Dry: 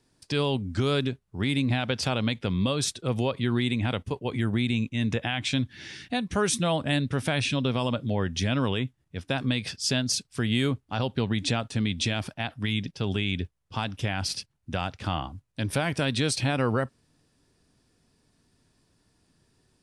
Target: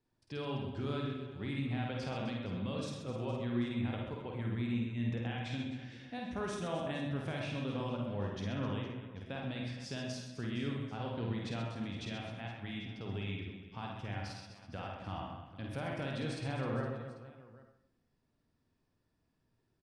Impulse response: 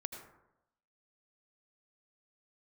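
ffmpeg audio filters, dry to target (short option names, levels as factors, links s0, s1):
-filter_complex "[0:a]aemphasis=mode=reproduction:type=75kf,aecho=1:1:50|130|258|462.8|790.5:0.631|0.398|0.251|0.158|0.1[s0];[1:a]atrim=start_sample=2205,asetrate=66150,aresample=44100[s1];[s0][s1]afir=irnorm=-1:irlink=0,volume=0.422"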